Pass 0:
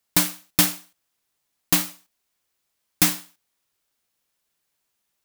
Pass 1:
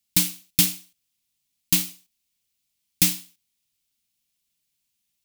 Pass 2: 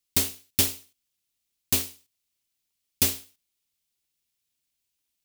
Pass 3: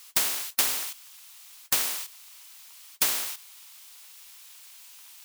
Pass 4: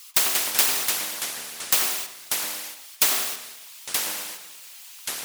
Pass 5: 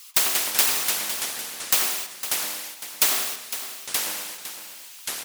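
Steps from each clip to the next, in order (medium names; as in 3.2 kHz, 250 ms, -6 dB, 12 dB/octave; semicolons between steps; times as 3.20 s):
high-order bell 790 Hz -13.5 dB 2.7 oct
cycle switcher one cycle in 2, inverted; trim -3.5 dB
resonant high-pass 990 Hz, resonance Q 1.8; spectrum-flattening compressor 4:1
resonances exaggerated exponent 1.5; filtered feedback delay 92 ms, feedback 32%, low-pass 1.5 kHz, level -3 dB; ever faster or slower copies 142 ms, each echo -4 st, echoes 3, each echo -6 dB; trim +4 dB
delay 507 ms -11.5 dB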